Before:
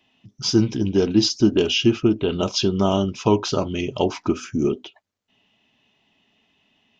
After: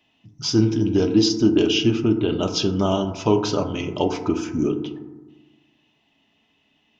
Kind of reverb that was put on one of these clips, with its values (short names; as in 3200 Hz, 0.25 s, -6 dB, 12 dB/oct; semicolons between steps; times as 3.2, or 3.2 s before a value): FDN reverb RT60 1.2 s, low-frequency decay 1.25×, high-frequency decay 0.3×, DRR 6 dB; gain -1.5 dB